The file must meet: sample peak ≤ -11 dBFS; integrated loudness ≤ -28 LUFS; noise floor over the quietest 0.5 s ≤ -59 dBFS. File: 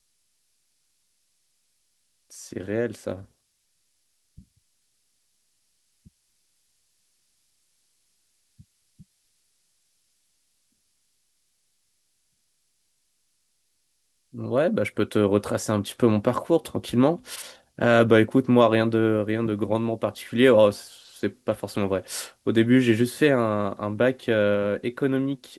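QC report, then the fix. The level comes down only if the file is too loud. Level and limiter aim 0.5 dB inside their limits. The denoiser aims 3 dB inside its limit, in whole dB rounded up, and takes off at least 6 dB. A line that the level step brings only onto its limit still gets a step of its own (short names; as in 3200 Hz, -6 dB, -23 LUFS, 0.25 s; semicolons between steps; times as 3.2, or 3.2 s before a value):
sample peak -4.0 dBFS: fail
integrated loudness -23.0 LUFS: fail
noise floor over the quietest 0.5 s -71 dBFS: OK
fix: gain -5.5 dB; limiter -11.5 dBFS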